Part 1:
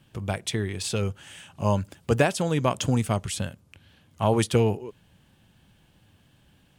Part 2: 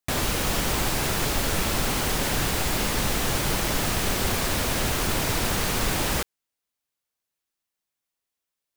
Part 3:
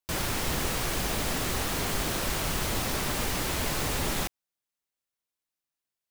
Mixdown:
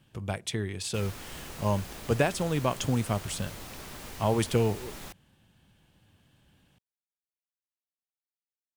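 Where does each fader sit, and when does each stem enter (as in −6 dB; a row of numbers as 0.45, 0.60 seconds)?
−4.0 dB, muted, −13.5 dB; 0.00 s, muted, 0.85 s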